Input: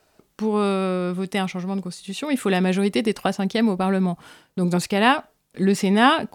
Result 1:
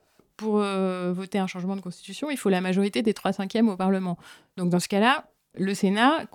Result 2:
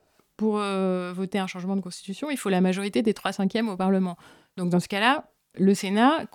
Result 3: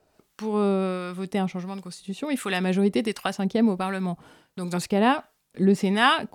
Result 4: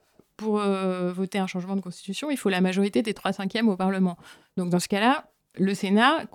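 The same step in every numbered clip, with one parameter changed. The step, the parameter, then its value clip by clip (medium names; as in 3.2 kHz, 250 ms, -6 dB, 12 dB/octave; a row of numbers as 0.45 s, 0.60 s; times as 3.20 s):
harmonic tremolo, rate: 3.6 Hz, 2.3 Hz, 1.4 Hz, 5.7 Hz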